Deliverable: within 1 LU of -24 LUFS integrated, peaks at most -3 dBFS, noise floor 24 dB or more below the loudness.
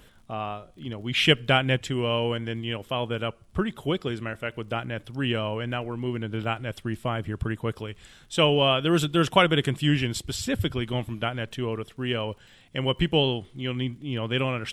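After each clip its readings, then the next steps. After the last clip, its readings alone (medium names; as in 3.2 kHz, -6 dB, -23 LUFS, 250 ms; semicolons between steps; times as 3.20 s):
tick rate 37 per s; loudness -26.5 LUFS; peak level -4.0 dBFS; loudness target -24.0 LUFS
-> de-click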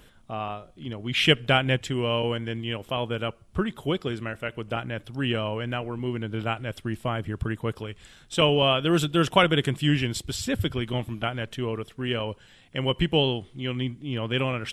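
tick rate 0.20 per s; loudness -26.5 LUFS; peak level -4.0 dBFS; loudness target -24.0 LUFS
-> trim +2.5 dB; peak limiter -3 dBFS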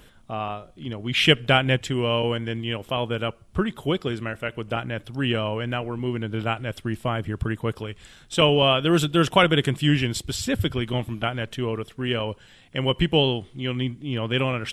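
loudness -24.0 LUFS; peak level -3.0 dBFS; noise floor -53 dBFS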